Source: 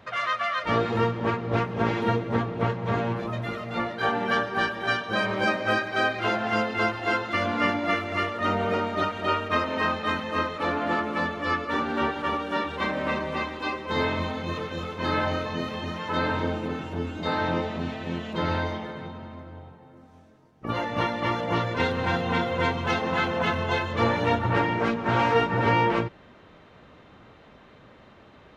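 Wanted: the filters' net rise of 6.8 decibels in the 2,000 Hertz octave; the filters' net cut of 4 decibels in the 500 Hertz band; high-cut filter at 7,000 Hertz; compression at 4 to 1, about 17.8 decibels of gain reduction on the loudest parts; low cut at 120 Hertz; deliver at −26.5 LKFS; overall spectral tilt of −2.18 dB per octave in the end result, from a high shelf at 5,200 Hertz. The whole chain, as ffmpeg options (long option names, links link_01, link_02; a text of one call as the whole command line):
ffmpeg -i in.wav -af "highpass=120,lowpass=7000,equalizer=frequency=500:width_type=o:gain=-5.5,equalizer=frequency=2000:width_type=o:gain=7.5,highshelf=frequency=5200:gain=9,acompressor=threshold=-39dB:ratio=4,volume=12dB" out.wav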